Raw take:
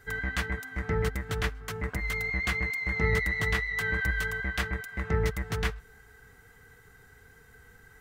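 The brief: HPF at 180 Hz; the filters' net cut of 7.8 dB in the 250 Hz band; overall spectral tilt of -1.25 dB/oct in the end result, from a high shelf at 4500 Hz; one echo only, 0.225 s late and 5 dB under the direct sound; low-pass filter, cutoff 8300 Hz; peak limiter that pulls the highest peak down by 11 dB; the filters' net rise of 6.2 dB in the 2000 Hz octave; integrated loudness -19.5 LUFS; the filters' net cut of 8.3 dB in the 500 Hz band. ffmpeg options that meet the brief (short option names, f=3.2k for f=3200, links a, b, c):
-af "highpass=180,lowpass=8.3k,equalizer=f=250:t=o:g=-7,equalizer=f=500:t=o:g=-7.5,equalizer=f=2k:t=o:g=8.5,highshelf=f=4.5k:g=-7,alimiter=limit=-23dB:level=0:latency=1,aecho=1:1:225:0.562,volume=9dB"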